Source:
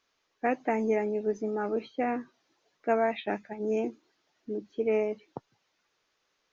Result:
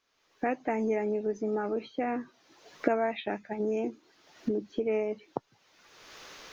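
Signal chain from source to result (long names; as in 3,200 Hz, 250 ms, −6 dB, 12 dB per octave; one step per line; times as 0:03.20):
camcorder AGC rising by 34 dB per second
level −2.5 dB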